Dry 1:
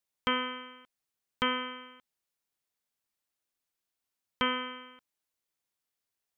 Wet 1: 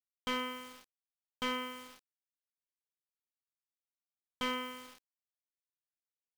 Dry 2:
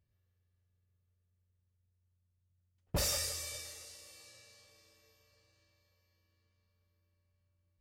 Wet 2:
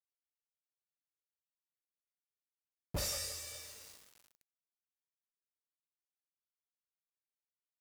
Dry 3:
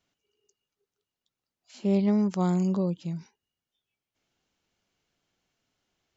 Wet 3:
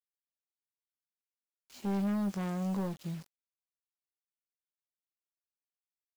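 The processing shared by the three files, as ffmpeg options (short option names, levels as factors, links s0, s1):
-filter_complex "[0:a]volume=21.1,asoftclip=hard,volume=0.0473,asplit=2[s0][s1];[s1]adelay=20,volume=0.316[s2];[s0][s2]amix=inputs=2:normalize=0,acrusher=bits=7:mix=0:aa=0.000001,volume=0.596"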